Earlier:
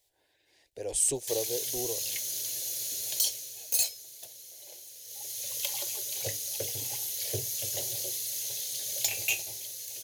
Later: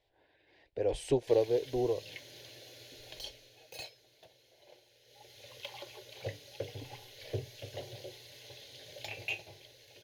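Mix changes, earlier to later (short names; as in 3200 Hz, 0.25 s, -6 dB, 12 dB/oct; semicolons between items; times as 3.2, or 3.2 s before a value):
speech +6.5 dB; master: add air absorption 370 m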